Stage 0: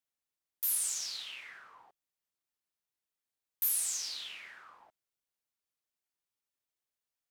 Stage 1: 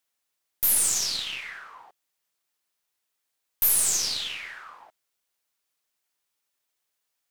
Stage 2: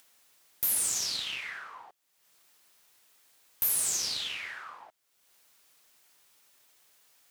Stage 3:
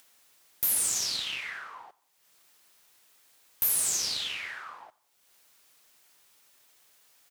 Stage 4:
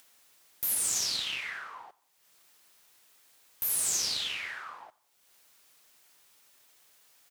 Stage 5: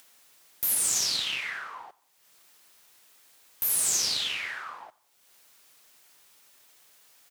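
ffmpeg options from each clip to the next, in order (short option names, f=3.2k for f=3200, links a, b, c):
-filter_complex "[0:a]lowshelf=f=330:g=-9,asplit=2[a][b];[b]alimiter=level_in=2dB:limit=-24dB:level=0:latency=1,volume=-2dB,volume=-2dB[c];[a][c]amix=inputs=2:normalize=0,aeval=exprs='0.158*(cos(1*acos(clip(val(0)/0.158,-1,1)))-cos(1*PI/2))+0.00891*(cos(4*acos(clip(val(0)/0.158,-1,1)))-cos(4*PI/2))+0.0158*(cos(6*acos(clip(val(0)/0.158,-1,1)))-cos(6*PI/2))':c=same,volume=6dB"
-af "acompressor=threshold=-35dB:ratio=1.5,highpass=60,acompressor=mode=upward:threshold=-49dB:ratio=2.5"
-af "aecho=1:1:88|176|264:0.0631|0.0297|0.0139,volume=1.5dB"
-af "alimiter=limit=-17.5dB:level=0:latency=1:release=223"
-af "highpass=70,volume=3.5dB"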